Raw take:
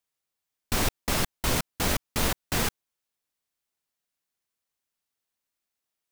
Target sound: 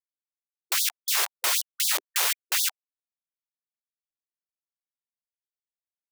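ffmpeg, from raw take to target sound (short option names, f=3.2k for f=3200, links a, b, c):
-filter_complex "[0:a]asplit=2[a][b];[b]asetrate=29433,aresample=44100,atempo=1.49831,volume=-18dB[c];[a][c]amix=inputs=2:normalize=0,equalizer=f=140:w=0.31:g=-14.5,asplit=2[d][e];[e]alimiter=limit=-23dB:level=0:latency=1:release=335,volume=0.5dB[f];[d][f]amix=inputs=2:normalize=0,asubboost=boost=8.5:cutoff=76,acrusher=bits=3:mix=0:aa=0.000001,afftfilt=real='re*gte(b*sr/1024,340*pow(3400/340,0.5+0.5*sin(2*PI*3.9*pts/sr)))':imag='im*gte(b*sr/1024,340*pow(3400/340,0.5+0.5*sin(2*PI*3.9*pts/sr)))':win_size=1024:overlap=0.75"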